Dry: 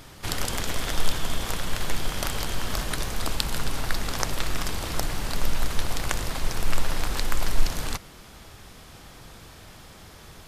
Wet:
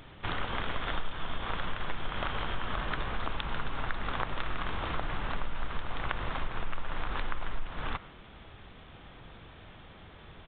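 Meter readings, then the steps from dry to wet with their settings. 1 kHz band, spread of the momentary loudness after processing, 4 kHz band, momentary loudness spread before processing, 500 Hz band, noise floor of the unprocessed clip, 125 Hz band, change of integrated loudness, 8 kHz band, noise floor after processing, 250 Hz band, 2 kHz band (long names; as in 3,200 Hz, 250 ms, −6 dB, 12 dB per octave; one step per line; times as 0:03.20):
−1.5 dB, 17 LU, −9.5 dB, 18 LU, −5.5 dB, −47 dBFS, −7.0 dB, −6.5 dB, below −40 dB, −52 dBFS, −6.5 dB, −3.0 dB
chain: dynamic equaliser 1,200 Hz, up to +7 dB, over −47 dBFS, Q 1.1
downward compressor 6 to 1, threshold −23 dBFS, peak gain reduction 13 dB
downsampling to 8,000 Hz
level −3.5 dB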